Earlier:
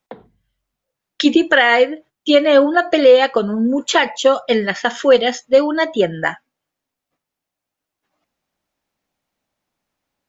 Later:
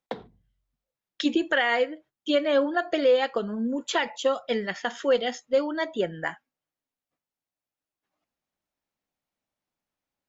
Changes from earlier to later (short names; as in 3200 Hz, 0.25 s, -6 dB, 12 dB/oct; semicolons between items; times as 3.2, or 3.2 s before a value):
speech -11.0 dB; background: remove air absorption 340 m